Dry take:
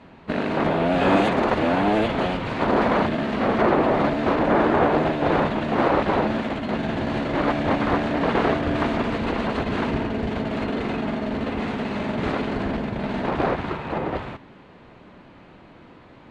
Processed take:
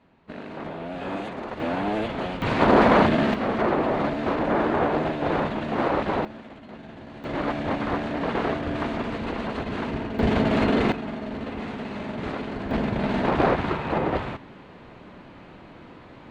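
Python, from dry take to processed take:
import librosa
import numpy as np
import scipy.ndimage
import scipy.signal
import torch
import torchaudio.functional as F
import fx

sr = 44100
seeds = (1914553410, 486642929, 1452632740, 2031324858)

y = fx.gain(x, sr, db=fx.steps((0.0, -13.0), (1.6, -6.0), (2.42, 3.5), (3.34, -4.0), (6.25, -16.5), (7.24, -5.0), (10.19, 5.0), (10.92, -6.0), (12.71, 2.0)))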